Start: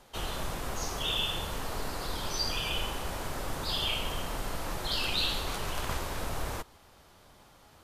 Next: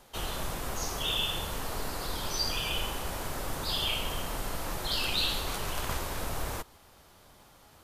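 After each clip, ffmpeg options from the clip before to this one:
-af "highshelf=f=10k:g=7"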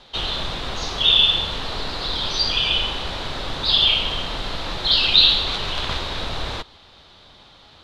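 -af "lowpass=f=3.8k:t=q:w=4.4,volume=6dB"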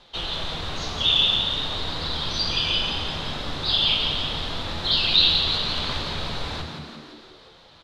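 -filter_complex "[0:a]flanger=delay=5.8:depth=1.2:regen=73:speed=0.4:shape=sinusoidal,asplit=9[a][b][c][d][e][f][g][h][i];[b]adelay=172,afreqshift=73,volume=-6.5dB[j];[c]adelay=344,afreqshift=146,volume=-10.8dB[k];[d]adelay=516,afreqshift=219,volume=-15.1dB[l];[e]adelay=688,afreqshift=292,volume=-19.4dB[m];[f]adelay=860,afreqshift=365,volume=-23.7dB[n];[g]adelay=1032,afreqshift=438,volume=-28dB[o];[h]adelay=1204,afreqshift=511,volume=-32.3dB[p];[i]adelay=1376,afreqshift=584,volume=-36.6dB[q];[a][j][k][l][m][n][o][p][q]amix=inputs=9:normalize=0"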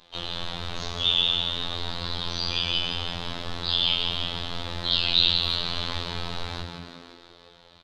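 -filter_complex "[0:a]afftfilt=real='hypot(re,im)*cos(PI*b)':imag='0':win_size=2048:overlap=0.75,asplit=2[a][b];[b]adelay=260,highpass=300,lowpass=3.4k,asoftclip=type=hard:threshold=-11.5dB,volume=-17dB[c];[a][c]amix=inputs=2:normalize=0"

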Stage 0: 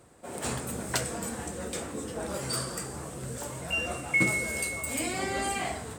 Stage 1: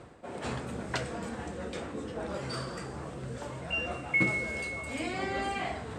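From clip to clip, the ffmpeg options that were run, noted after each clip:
-af "lowpass=3.9k,areverse,acompressor=mode=upward:threshold=-34dB:ratio=2.5,areverse,volume=-1.5dB"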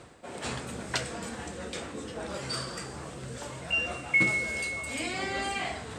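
-af "highshelf=f=2.3k:g=10.5,volume=-1.5dB"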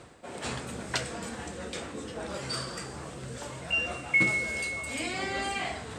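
-af anull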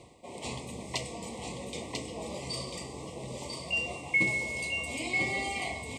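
-af "asuperstop=centerf=1500:order=12:qfactor=1.9,aecho=1:1:994:0.596,volume=-2.5dB"

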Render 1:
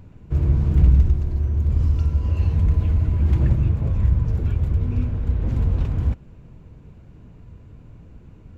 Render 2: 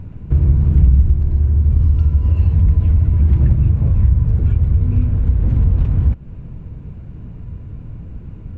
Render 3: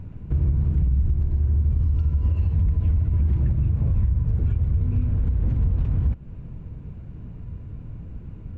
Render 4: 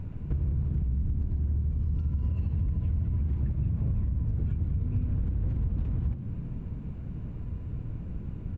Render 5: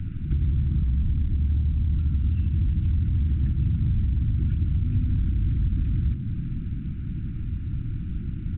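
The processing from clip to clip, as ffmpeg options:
-af "bass=f=250:g=7,treble=f=4k:g=-9,acompressor=threshold=-21dB:ratio=2,volume=6dB"
-af "alimiter=limit=-9dB:level=0:latency=1:release=74,volume=-5dB"
-filter_complex "[0:a]acompressor=threshold=-26dB:ratio=5,asplit=2[a][b];[b]asplit=6[c][d][e][f][g][h];[c]adelay=199,afreqshift=41,volume=-11dB[i];[d]adelay=398,afreqshift=82,volume=-16.2dB[j];[e]adelay=597,afreqshift=123,volume=-21.4dB[k];[f]adelay=796,afreqshift=164,volume=-26.6dB[l];[g]adelay=995,afreqshift=205,volume=-31.8dB[m];[h]adelay=1194,afreqshift=246,volume=-37dB[n];[i][j][k][l][m][n]amix=inputs=6:normalize=0[o];[a][o]amix=inputs=2:normalize=0"
-filter_complex "[0:a]asplit=2[a][b];[b]asoftclip=type=tanh:threshold=-29.5dB,volume=-4dB[c];[a][c]amix=inputs=2:normalize=0,asuperstop=centerf=660:order=20:qfactor=0.73,volume=2.5dB" -ar 8000 -c:a pcm_mulaw

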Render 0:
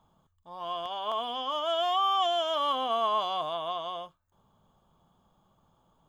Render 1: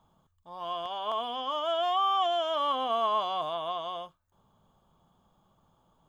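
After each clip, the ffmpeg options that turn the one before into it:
-filter_complex "[0:a]acrossover=split=2900[a][b];[b]acompressor=threshold=-43dB:ratio=4:attack=1:release=60[c];[a][c]amix=inputs=2:normalize=0"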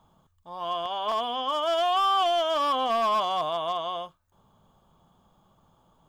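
-af "asoftclip=type=hard:threshold=-24.5dB,volume=4.5dB"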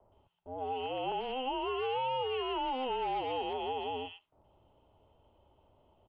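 -filter_complex "[0:a]acrossover=split=2000[a][b];[b]adelay=120[c];[a][c]amix=inputs=2:normalize=0,highpass=f=160:t=q:w=0.5412,highpass=f=160:t=q:w=1.307,lowpass=f=3.5k:t=q:w=0.5176,lowpass=f=3.5k:t=q:w=0.7071,lowpass=f=3.5k:t=q:w=1.932,afreqshift=-260,acrossover=split=630|2400[d][e][f];[d]acompressor=threshold=-39dB:ratio=4[g];[e]acompressor=threshold=-34dB:ratio=4[h];[f]acompressor=threshold=-46dB:ratio=4[i];[g][h][i]amix=inputs=3:normalize=0,volume=-1.5dB"

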